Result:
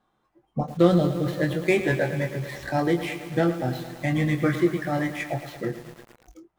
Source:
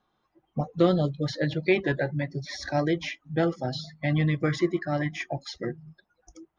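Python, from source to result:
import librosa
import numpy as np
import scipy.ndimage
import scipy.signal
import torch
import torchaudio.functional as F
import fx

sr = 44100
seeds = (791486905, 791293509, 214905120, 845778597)

y = scipy.ndimage.median_filter(x, 9, mode='constant')
y = fx.doubler(y, sr, ms=23.0, db=-7)
y = fx.echo_crushed(y, sr, ms=111, feedback_pct=80, bits=7, wet_db=-11.5)
y = y * 10.0 ** (2.0 / 20.0)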